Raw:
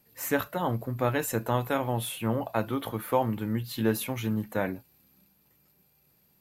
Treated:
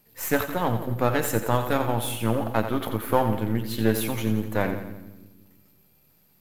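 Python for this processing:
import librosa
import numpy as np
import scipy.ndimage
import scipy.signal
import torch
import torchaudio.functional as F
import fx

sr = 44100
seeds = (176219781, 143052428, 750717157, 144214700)

y = np.where(x < 0.0, 10.0 ** (-7.0 / 20.0) * x, x)
y = fx.echo_split(y, sr, split_hz=350.0, low_ms=168, high_ms=87, feedback_pct=52, wet_db=-9)
y = y * 10.0 ** (5.5 / 20.0)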